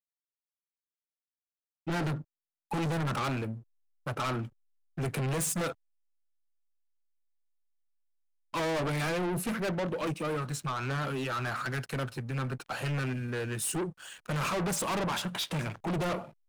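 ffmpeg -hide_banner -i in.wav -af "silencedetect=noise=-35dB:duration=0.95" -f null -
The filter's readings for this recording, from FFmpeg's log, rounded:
silence_start: 0.00
silence_end: 1.87 | silence_duration: 1.87
silence_start: 5.71
silence_end: 8.54 | silence_duration: 2.83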